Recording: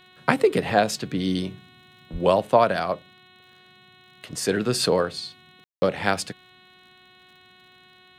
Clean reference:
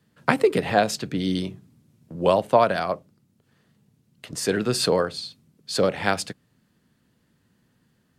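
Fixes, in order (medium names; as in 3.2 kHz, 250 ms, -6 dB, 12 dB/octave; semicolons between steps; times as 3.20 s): de-click; de-hum 367.4 Hz, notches 11; 2.12–2.24 s: high-pass 140 Hz 24 dB/octave; room tone fill 5.64–5.82 s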